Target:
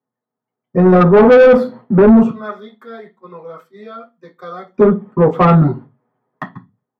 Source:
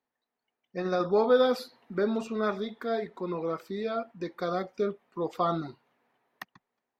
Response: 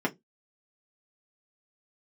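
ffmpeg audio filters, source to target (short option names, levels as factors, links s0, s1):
-filter_complex "[0:a]asettb=1/sr,asplit=3[s0][s1][s2];[s0]atrim=end=2.304[s3];[s1]atrim=start=2.3:end=4.74,asetpts=PTS-STARTPTS,afade=t=in:d=0.004:c=qsin,afade=t=out:st=2.436:d=0.004:c=qsin,aderivative[s4];[s2]atrim=start=4.736[s5];[s3][s4]acrossfade=d=0.004:c1=hsin:c2=qsin[s6];[s6][s5]acrossfade=d=0.004:c1=qsin:c2=hsin,agate=range=0.141:threshold=0.00158:ratio=16:detection=peak[s7];[1:a]atrim=start_sample=2205,asetrate=26901,aresample=44100[s8];[s7][s8]afir=irnorm=-1:irlink=0,asoftclip=type=tanh:threshold=0.266,highshelf=f=2800:g=-12,volume=2.51"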